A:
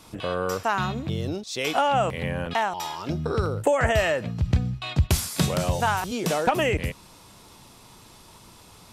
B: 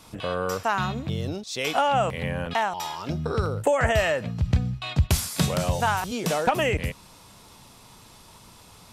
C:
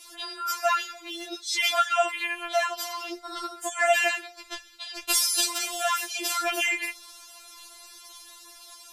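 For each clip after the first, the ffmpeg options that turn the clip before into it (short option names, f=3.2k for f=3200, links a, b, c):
-af "equalizer=f=340:t=o:w=0.46:g=-4"
-af "tiltshelf=f=780:g=-8.5,afftfilt=real='re*4*eq(mod(b,16),0)':imag='im*4*eq(mod(b,16),0)':win_size=2048:overlap=0.75"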